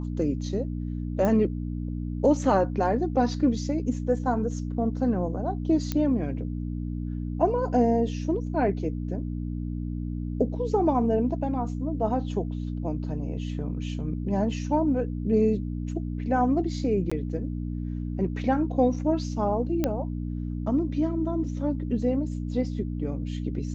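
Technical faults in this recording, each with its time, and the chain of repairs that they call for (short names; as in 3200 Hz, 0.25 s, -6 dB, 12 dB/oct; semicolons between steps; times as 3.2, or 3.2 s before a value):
hum 60 Hz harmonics 5 -31 dBFS
1.25 pop -15 dBFS
5.92 pop -13 dBFS
17.1–17.11 gap 15 ms
19.84 pop -12 dBFS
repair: de-click; de-hum 60 Hz, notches 5; interpolate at 17.1, 15 ms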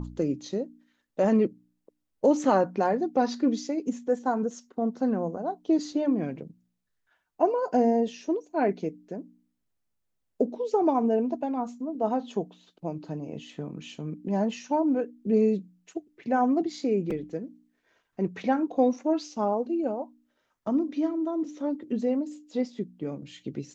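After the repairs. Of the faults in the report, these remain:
none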